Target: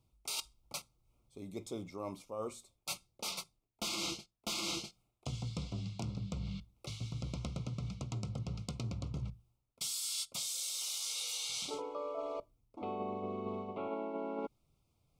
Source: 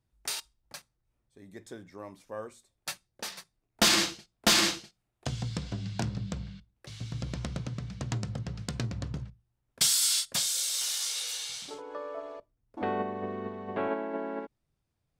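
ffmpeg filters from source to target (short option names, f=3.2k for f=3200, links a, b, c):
-af "areverse,acompressor=threshold=-41dB:ratio=12,areverse,asuperstop=centerf=1700:order=12:qfactor=2.4,volume=5dB"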